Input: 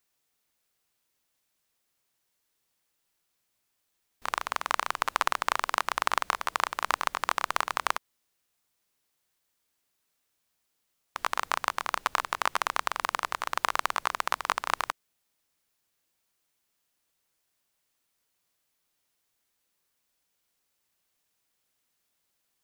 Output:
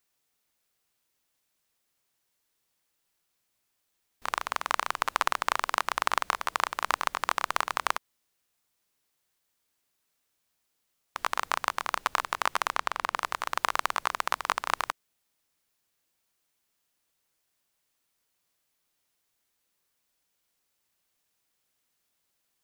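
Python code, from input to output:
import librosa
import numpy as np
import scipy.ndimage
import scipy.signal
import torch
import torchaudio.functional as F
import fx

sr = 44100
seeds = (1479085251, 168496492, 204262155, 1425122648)

y = fx.high_shelf(x, sr, hz=fx.line((12.73, 8100.0), (13.15, 4900.0)), db=-8.0, at=(12.73, 13.15), fade=0.02)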